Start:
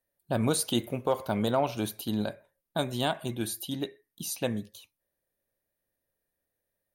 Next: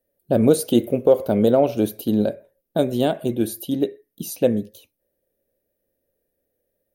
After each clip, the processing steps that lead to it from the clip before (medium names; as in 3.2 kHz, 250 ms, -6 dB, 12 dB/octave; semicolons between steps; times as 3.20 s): graphic EQ 125/250/500/1000/2000/4000/8000 Hz -3/+3/+9/-12/-5/-6/-7 dB; trim +8 dB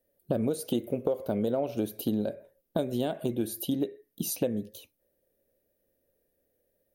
compression 6:1, threshold -26 dBFS, peak gain reduction 16 dB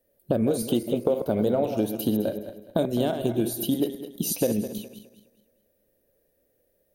backward echo that repeats 104 ms, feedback 55%, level -8 dB; trim +4.5 dB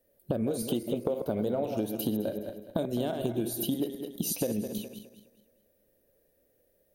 compression 2.5:1, threshold -29 dBFS, peak gain reduction 7.5 dB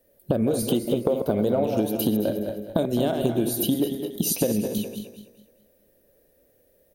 echo from a far wall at 39 m, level -10 dB; trim +7 dB